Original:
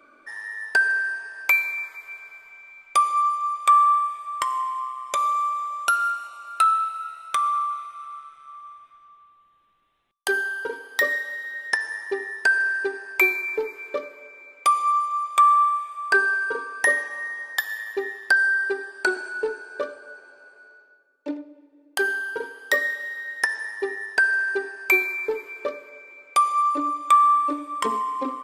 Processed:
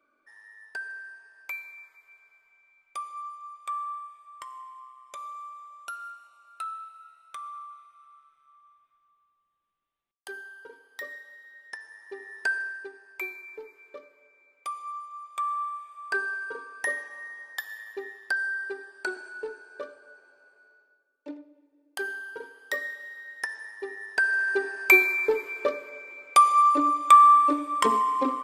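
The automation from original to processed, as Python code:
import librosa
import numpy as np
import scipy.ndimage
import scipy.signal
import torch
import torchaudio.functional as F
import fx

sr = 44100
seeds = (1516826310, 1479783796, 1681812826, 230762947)

y = fx.gain(x, sr, db=fx.line((11.95, -17.0), (12.48, -7.5), (12.91, -16.0), (15.11, -16.0), (16.16, -9.5), (23.81, -9.5), (24.77, 2.0)))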